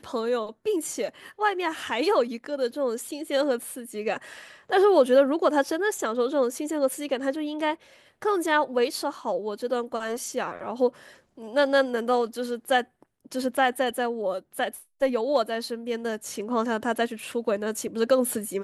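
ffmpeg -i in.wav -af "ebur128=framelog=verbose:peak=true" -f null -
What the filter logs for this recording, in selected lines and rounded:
Integrated loudness:
  I:         -26.2 LUFS
  Threshold: -36.4 LUFS
Loudness range:
  LRA:         4.4 LU
  Threshold: -46.4 LUFS
  LRA low:   -28.0 LUFS
  LRA high:  -23.6 LUFS
True peak:
  Peak:       -9.1 dBFS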